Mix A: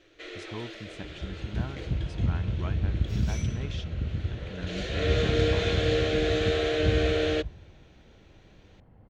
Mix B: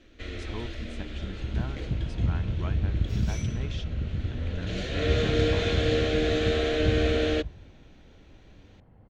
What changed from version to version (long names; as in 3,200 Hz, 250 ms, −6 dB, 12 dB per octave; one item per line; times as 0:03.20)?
first sound: remove linear-phase brick-wall high-pass 290 Hz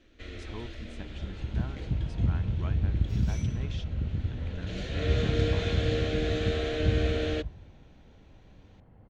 speech −3.5 dB
first sound −5.0 dB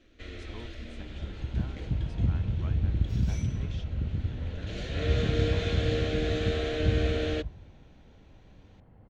speech −4.5 dB